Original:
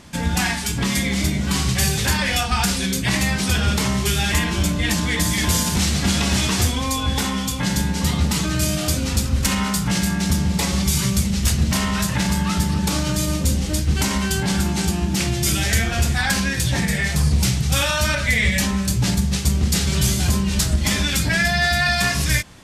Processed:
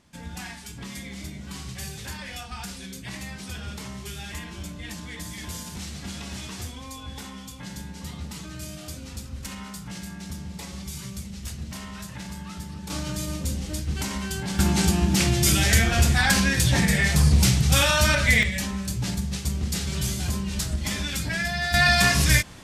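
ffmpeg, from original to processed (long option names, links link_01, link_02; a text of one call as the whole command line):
ffmpeg -i in.wav -af "asetnsamples=nb_out_samples=441:pad=0,asendcmd='12.9 volume volume -9dB;14.59 volume volume 0dB;18.43 volume volume -8.5dB;21.74 volume volume 0.5dB',volume=-16.5dB" out.wav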